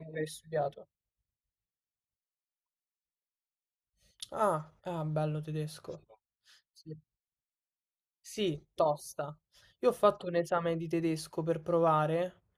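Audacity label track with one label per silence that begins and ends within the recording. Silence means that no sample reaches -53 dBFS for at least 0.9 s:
0.840000	4.200000	silence
6.990000	8.250000	silence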